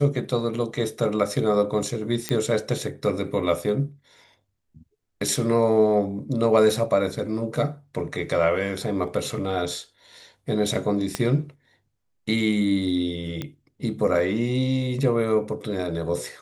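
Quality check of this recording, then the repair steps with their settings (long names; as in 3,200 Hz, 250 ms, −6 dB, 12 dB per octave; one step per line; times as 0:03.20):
0:02.29: click −10 dBFS
0:11.15: click −10 dBFS
0:13.42: click −16 dBFS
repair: click removal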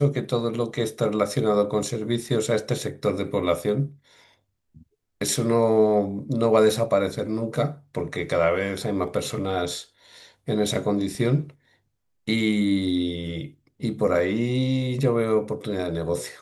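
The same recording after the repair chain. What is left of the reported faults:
0:11.15: click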